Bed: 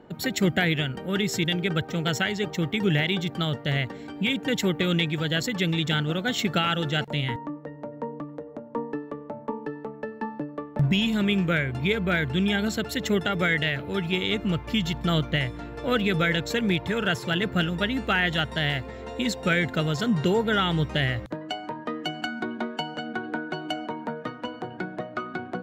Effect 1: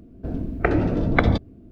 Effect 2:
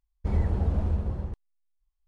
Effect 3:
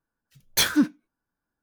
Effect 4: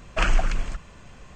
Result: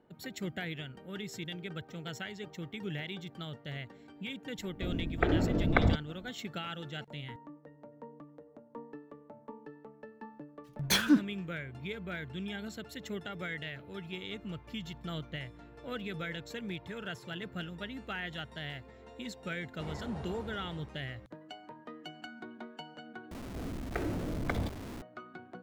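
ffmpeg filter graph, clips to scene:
-filter_complex "[1:a]asplit=2[a][b];[0:a]volume=-15.5dB[c];[3:a]highshelf=f=5k:g=-7.5[d];[2:a]highpass=f=650:p=1[e];[b]aeval=exprs='val(0)+0.5*0.0944*sgn(val(0))':c=same[f];[c]asplit=2[g][h];[g]atrim=end=23.314[i];[f]atrim=end=1.71,asetpts=PTS-STARTPTS,volume=-17dB[j];[h]atrim=start=25.016[k];[a]atrim=end=1.71,asetpts=PTS-STARTPTS,volume=-7.5dB,afade=t=in:d=0.004:c=hsin,afade=t=out:st=1.706:d=0.004:c=hsin,adelay=4580[l];[d]atrim=end=1.62,asetpts=PTS-STARTPTS,volume=-4dB,afade=t=in:d=0.004:c=hsin,afade=t=out:st=1.616:d=0.004:c=hsin,adelay=10330[m];[e]atrim=end=2.07,asetpts=PTS-STARTPTS,volume=-3dB,afade=t=in:d=0.004:c=hsin,afade=t=out:st=2.066:d=0.004:c=hsin,adelay=19550[n];[i][j]acrossfade=d=0.004:c1=hsin:c2=hsin[o];[o][k]acrossfade=d=0.004:c1=hsin:c2=hsin[p];[p][l][m][n]amix=inputs=4:normalize=0"

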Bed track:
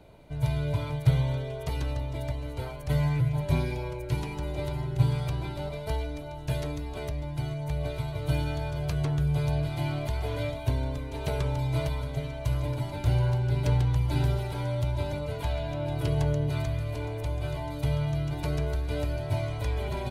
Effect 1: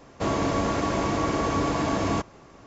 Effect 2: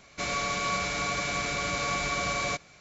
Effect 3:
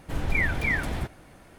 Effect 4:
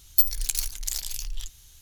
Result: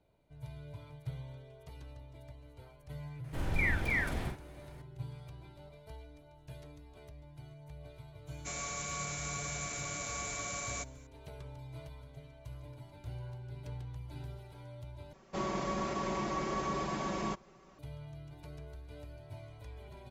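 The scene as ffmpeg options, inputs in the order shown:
-filter_complex "[0:a]volume=-19dB[a];[3:a]asplit=2[b][c];[c]adelay=46,volume=-5dB[d];[b][d]amix=inputs=2:normalize=0[e];[2:a]aexciter=amount=5.4:drive=5.5:freq=6.4k[f];[1:a]aecho=1:1:5.3:0.83[g];[a]asplit=2[h][i];[h]atrim=end=15.134[j];[g]atrim=end=2.66,asetpts=PTS-STARTPTS,volume=-12dB[k];[i]atrim=start=17.786[l];[e]atrim=end=1.58,asetpts=PTS-STARTPTS,volume=-7dB,afade=t=in:d=0.004:c=hsin,afade=t=out:st=1.576:d=0.004:c=hsin,adelay=3240[m];[f]atrim=end=2.8,asetpts=PTS-STARTPTS,volume=-12dB,afade=t=in:d=0.004:c=hsin,afade=t=out:st=2.796:d=0.004:c=hsin,adelay=8270[n];[j][k]acrossfade=d=0.004:c1=hsin:c2=hsin[o];[o][l]acrossfade=d=0.004:c1=hsin:c2=hsin[p];[p][m][n]amix=inputs=3:normalize=0"

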